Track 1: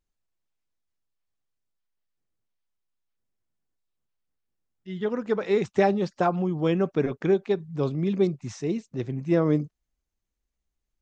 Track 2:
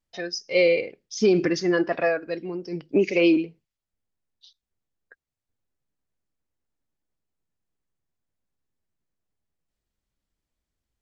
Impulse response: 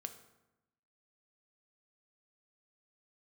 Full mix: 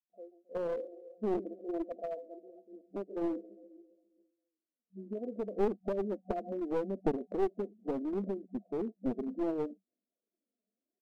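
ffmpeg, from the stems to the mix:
-filter_complex "[0:a]acompressor=threshold=-30dB:ratio=12,adelay=100,volume=2dB[a];[1:a]asubboost=boost=9.5:cutoff=78,aeval=exprs='0.335*(cos(1*acos(clip(val(0)/0.335,-1,1)))-cos(1*PI/2))+0.075*(cos(3*acos(clip(val(0)/0.335,-1,1)))-cos(3*PI/2))+0.00531*(cos(7*acos(clip(val(0)/0.335,-1,1)))-cos(7*PI/2))':c=same,volume=-7dB,asplit=3[b][c][d];[c]volume=-15.5dB[e];[d]apad=whole_len=490347[f];[a][f]sidechaincompress=threshold=-49dB:ratio=8:attack=6.9:release=1470[g];[e]aecho=0:1:135|270|405|540|675|810|945|1080|1215:1|0.57|0.325|0.185|0.106|0.0602|0.0343|0.0195|0.0111[h];[g][b][h]amix=inputs=3:normalize=0,afftfilt=real='re*between(b*sr/4096,190,740)':imag='im*between(b*sr/4096,190,740)':win_size=4096:overlap=0.75,aphaser=in_gain=1:out_gain=1:delay=4.9:decay=0.55:speed=0.7:type=triangular,aeval=exprs='clip(val(0),-1,0.0224)':c=same"

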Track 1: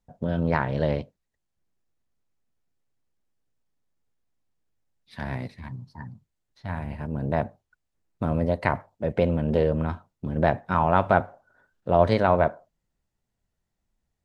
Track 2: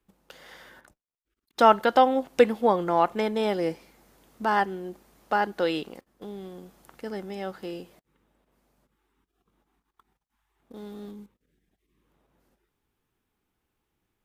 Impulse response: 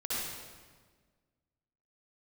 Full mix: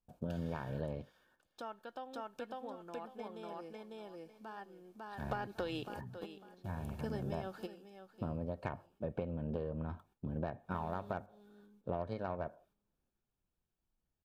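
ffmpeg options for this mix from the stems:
-filter_complex "[0:a]tiltshelf=f=1.3k:g=3.5,volume=-9dB,asplit=2[a][b];[1:a]acompressor=threshold=-27dB:ratio=2,volume=-1.5dB,asplit=2[c][d];[d]volume=-16dB[e];[b]apad=whole_len=628032[f];[c][f]sidechaingate=range=-16dB:threshold=-59dB:ratio=16:detection=peak[g];[e]aecho=0:1:550|1100|1650|2200:1|0.22|0.0484|0.0106[h];[a][g][h]amix=inputs=3:normalize=0,aeval=exprs='0.299*(cos(1*acos(clip(val(0)/0.299,-1,1)))-cos(1*PI/2))+0.0211*(cos(3*acos(clip(val(0)/0.299,-1,1)))-cos(3*PI/2))+0.00422*(cos(7*acos(clip(val(0)/0.299,-1,1)))-cos(7*PI/2))+0.00376*(cos(8*acos(clip(val(0)/0.299,-1,1)))-cos(8*PI/2))':c=same,asuperstop=centerf=2000:order=20:qfactor=7.2,acompressor=threshold=-34dB:ratio=12"

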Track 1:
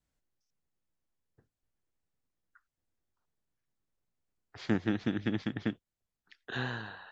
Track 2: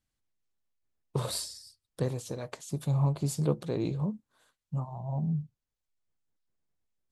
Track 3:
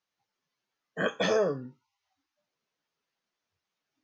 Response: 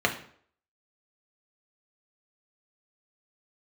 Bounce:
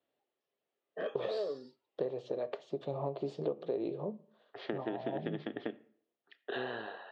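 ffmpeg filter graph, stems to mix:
-filter_complex "[0:a]acompressor=threshold=-33dB:ratio=6,volume=2dB,asplit=2[a][b];[b]volume=-22.5dB[c];[1:a]volume=-0.5dB,asplit=2[d][e];[e]volume=-23.5dB[f];[2:a]acompressor=threshold=-26dB:ratio=6,asoftclip=type=tanh:threshold=-24.5dB,volume=-5.5dB[g];[3:a]atrim=start_sample=2205[h];[c][f]amix=inputs=2:normalize=0[i];[i][h]afir=irnorm=-1:irlink=0[j];[a][d][g][j]amix=inputs=4:normalize=0,highpass=330,equalizer=f=400:t=q:w=4:g=8,equalizer=f=610:t=q:w=4:g=7,equalizer=f=1k:t=q:w=4:g=-4,equalizer=f=1.5k:t=q:w=4:g=-8,equalizer=f=2.2k:t=q:w=4:g=-3,lowpass=f=3.3k:w=0.5412,lowpass=f=3.3k:w=1.3066,acompressor=threshold=-31dB:ratio=6"

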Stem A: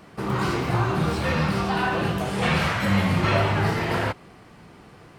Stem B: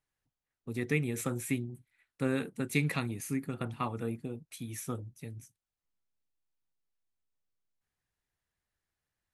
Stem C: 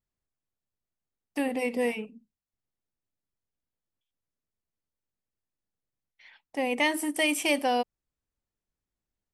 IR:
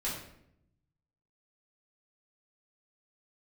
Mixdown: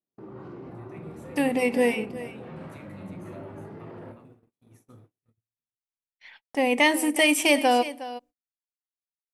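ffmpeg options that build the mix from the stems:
-filter_complex "[0:a]bandpass=f=350:t=q:w=1.2:csg=0,volume=-8dB,asplit=2[a][b];[b]volume=-15dB[c];[1:a]volume=-19dB,asplit=3[d][e][f];[e]volume=-9.5dB[g];[f]volume=-7.5dB[h];[2:a]dynaudnorm=f=130:g=17:m=5dB,volume=0dB,asplit=3[i][j][k];[j]volume=-23.5dB[l];[k]volume=-14.5dB[m];[a][d]amix=inputs=2:normalize=0,equalizer=f=110:w=4.1:g=8.5,alimiter=level_in=13.5dB:limit=-24dB:level=0:latency=1:release=34,volume=-13.5dB,volume=0dB[n];[3:a]atrim=start_sample=2205[o];[c][g][l]amix=inputs=3:normalize=0[p];[p][o]afir=irnorm=-1:irlink=0[q];[h][m]amix=inputs=2:normalize=0,aecho=0:1:363:1[r];[i][n][q][r]amix=inputs=4:normalize=0,agate=range=-37dB:threshold=-51dB:ratio=16:detection=peak"

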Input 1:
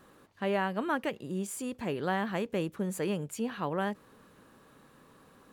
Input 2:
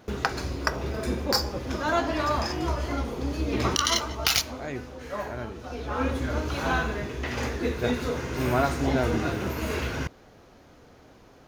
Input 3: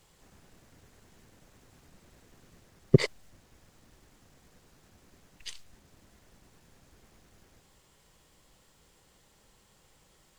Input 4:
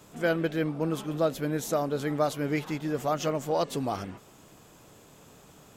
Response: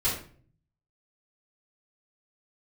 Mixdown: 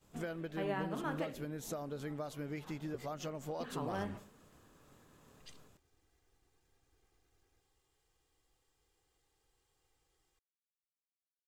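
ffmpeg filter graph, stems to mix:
-filter_complex "[0:a]adelay=150,volume=-11dB,asplit=3[a][b][c];[a]atrim=end=1.43,asetpts=PTS-STARTPTS,afade=t=out:st=1.426:d=0.004:c=hsin[d];[b]atrim=start=1.43:end=3.6,asetpts=PTS-STARTPTS,volume=0[e];[c]atrim=start=3.6,asetpts=PTS-STARTPTS,afade=t=in:d=0.004:c=hsin[f];[d][e][f]concat=n=3:v=0:a=1,asplit=2[g][h];[h]volume=-13.5dB[i];[2:a]aecho=1:1:2.5:0.74,volume=-17dB[j];[3:a]agate=range=-33dB:threshold=-45dB:ratio=3:detection=peak,lowshelf=f=86:g=11,volume=-3.5dB[k];[j][k]amix=inputs=2:normalize=0,acompressor=threshold=-38dB:ratio=12,volume=0dB[l];[4:a]atrim=start_sample=2205[m];[i][m]afir=irnorm=-1:irlink=0[n];[g][l][n]amix=inputs=3:normalize=0"

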